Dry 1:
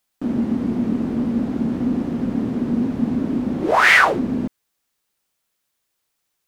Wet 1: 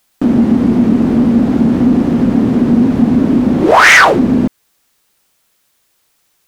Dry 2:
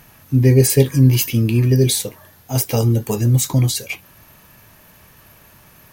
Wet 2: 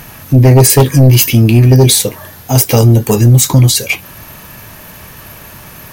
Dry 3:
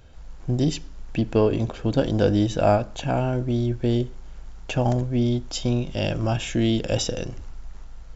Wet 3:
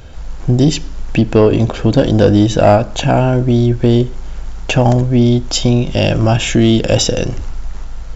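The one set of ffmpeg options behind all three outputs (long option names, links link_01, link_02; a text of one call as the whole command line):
ffmpeg -i in.wav -filter_complex "[0:a]asplit=2[link_01][link_02];[link_02]acompressor=threshold=-27dB:ratio=6,volume=-0.5dB[link_03];[link_01][link_03]amix=inputs=2:normalize=0,aeval=exprs='1*sin(PI/2*2*val(0)/1)':channel_layout=same,volume=-1dB" out.wav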